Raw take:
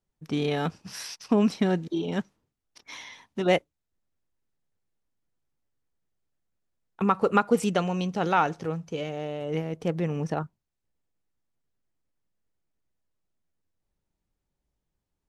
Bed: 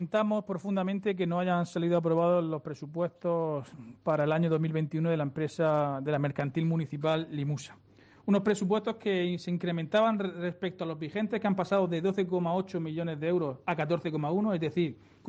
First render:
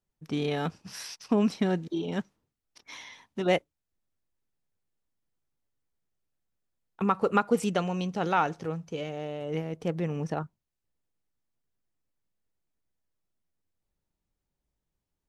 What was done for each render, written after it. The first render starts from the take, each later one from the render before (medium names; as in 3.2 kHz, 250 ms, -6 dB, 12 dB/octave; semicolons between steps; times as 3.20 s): trim -2.5 dB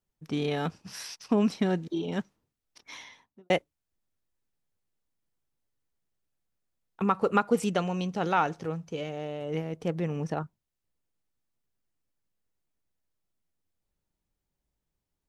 2.96–3.50 s: studio fade out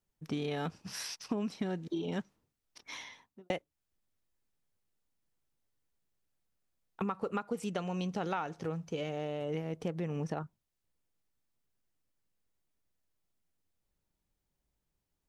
compression 6:1, threshold -32 dBFS, peak gain reduction 13.5 dB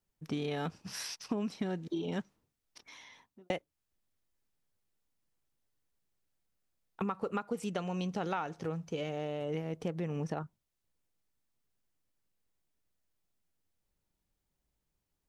2.87–3.42 s: compression 3:1, threshold -52 dBFS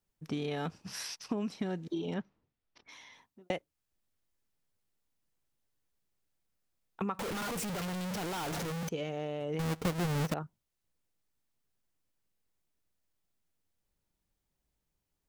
2.14–2.89 s: distance through air 200 m; 7.19–8.89 s: one-bit comparator; 9.59–10.34 s: square wave that keeps the level